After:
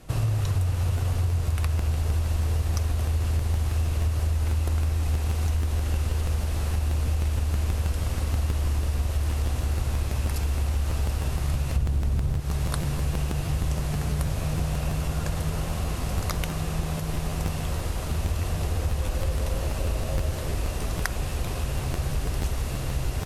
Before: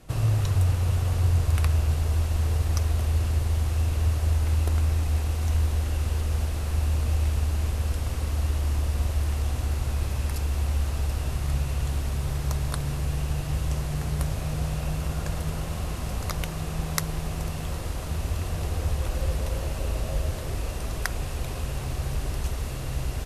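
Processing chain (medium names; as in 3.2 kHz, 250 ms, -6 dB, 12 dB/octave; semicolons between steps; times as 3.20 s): 11.76–12.40 s: bass shelf 470 Hz +10.5 dB; compression 12:1, threshold -23 dBFS, peak gain reduction 12 dB; crackling interface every 0.16 s, samples 512, repeat, from 0.81 s; trim +2.5 dB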